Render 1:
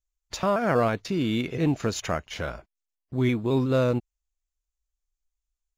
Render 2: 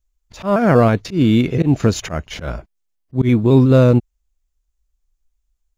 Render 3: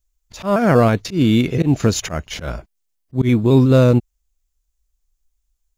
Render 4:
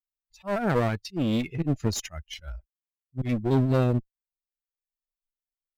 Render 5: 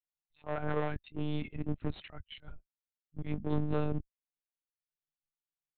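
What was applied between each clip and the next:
bass shelf 390 Hz +9.5 dB; slow attack 113 ms; trim +6 dB
treble shelf 4.2 kHz +7.5 dB; trim -1 dB
expander on every frequency bin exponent 2; one-sided clip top -25 dBFS; trim -5 dB
monotone LPC vocoder at 8 kHz 150 Hz; trim -8 dB

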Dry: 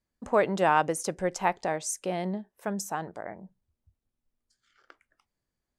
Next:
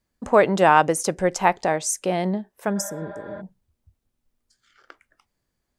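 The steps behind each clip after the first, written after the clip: spectral replace 2.78–3.39 s, 500–4900 Hz before; trim +7.5 dB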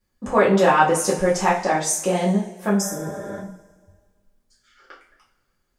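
in parallel at -1.5 dB: peak limiter -14.5 dBFS, peak gain reduction 12 dB; on the sum: two-slope reverb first 0.37 s, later 1.7 s, from -19 dB, DRR -7 dB; trim -9.5 dB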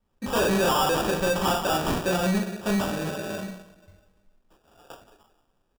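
delay 178 ms -15.5 dB; sample-and-hold 21×; saturation -19.5 dBFS, distortion -8 dB

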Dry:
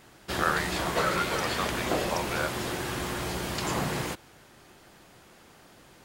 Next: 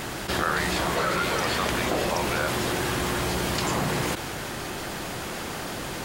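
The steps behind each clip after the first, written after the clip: level flattener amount 70%; trim -1 dB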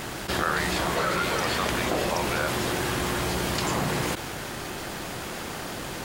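crossover distortion -47.5 dBFS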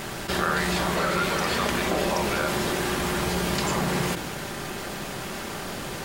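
simulated room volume 2000 m³, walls furnished, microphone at 1.2 m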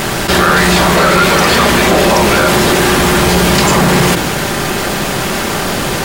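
waveshaping leveller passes 3; trim +6.5 dB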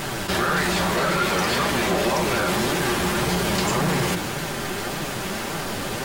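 flange 1.8 Hz, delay 5.8 ms, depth 5.3 ms, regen +44%; trim -8.5 dB

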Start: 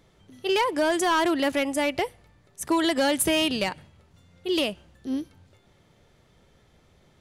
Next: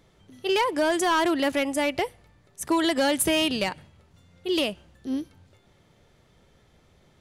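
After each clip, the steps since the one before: no audible change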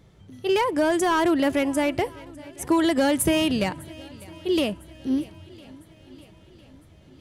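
peaking EQ 100 Hz +9.5 dB 2.8 oct; shuffle delay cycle 1005 ms, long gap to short 1.5:1, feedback 46%, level -22.5 dB; dynamic bell 4 kHz, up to -4 dB, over -43 dBFS, Q 1.1

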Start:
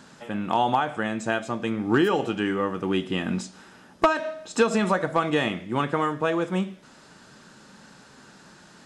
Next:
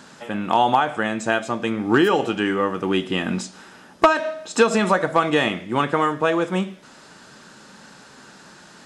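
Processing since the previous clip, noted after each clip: bass shelf 210 Hz -6 dB; trim +5.5 dB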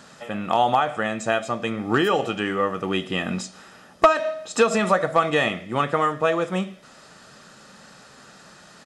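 comb 1.6 ms, depth 37%; trim -2 dB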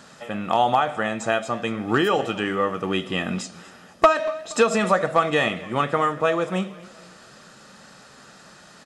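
modulated delay 237 ms, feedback 47%, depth 119 cents, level -20.5 dB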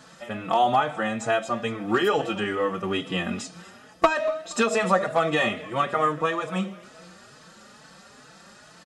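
endless flanger 4.2 ms +2.3 Hz; trim +1 dB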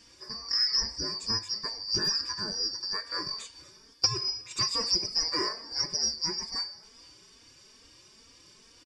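four frequency bands reordered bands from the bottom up 2341; trim -6.5 dB

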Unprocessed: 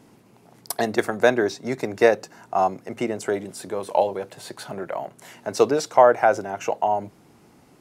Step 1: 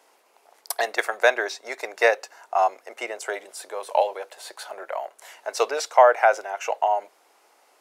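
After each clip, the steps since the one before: dynamic bell 2.3 kHz, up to +5 dB, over -38 dBFS, Q 1.1; high-pass 530 Hz 24 dB/octave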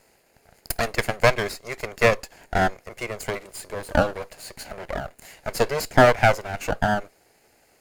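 comb filter that takes the minimum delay 0.43 ms; peaking EQ 2.5 kHz -3.5 dB 1.8 oct; trim +3 dB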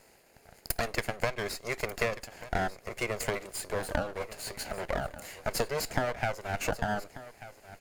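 compression 20:1, threshold -26 dBFS, peak gain reduction 18 dB; delay 1189 ms -16 dB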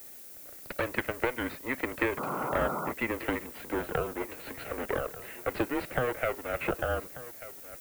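painted sound noise, 2.17–2.92 s, 250–1600 Hz -35 dBFS; mistuned SSB -130 Hz 170–3400 Hz; added noise violet -49 dBFS; trim +1.5 dB

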